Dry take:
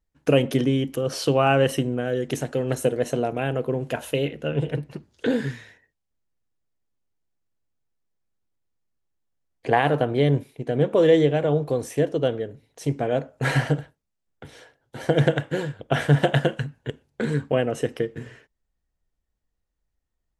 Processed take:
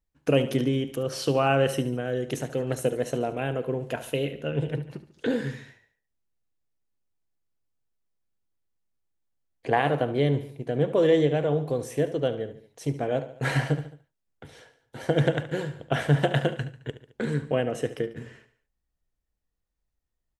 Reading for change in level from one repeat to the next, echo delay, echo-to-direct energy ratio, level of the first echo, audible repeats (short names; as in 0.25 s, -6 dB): -5.5 dB, 72 ms, -12.5 dB, -14.0 dB, 3